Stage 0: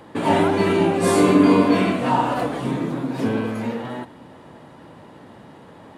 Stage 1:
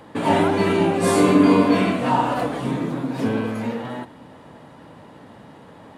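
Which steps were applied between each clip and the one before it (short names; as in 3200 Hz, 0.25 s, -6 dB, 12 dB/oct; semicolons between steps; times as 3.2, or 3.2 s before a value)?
notch 360 Hz, Q 12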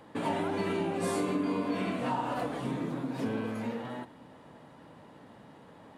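bell 85 Hz -3 dB 0.73 oct; compressor 6:1, threshold -19 dBFS, peak gain reduction 9 dB; gain -8.5 dB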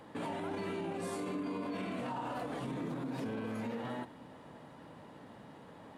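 limiter -31 dBFS, peak gain reduction 10.5 dB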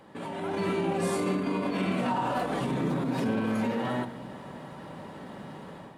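AGC gain up to 9.5 dB; shoebox room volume 4000 m³, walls furnished, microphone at 1.1 m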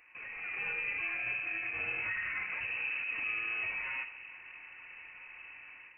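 inverted band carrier 2800 Hz; gain -8 dB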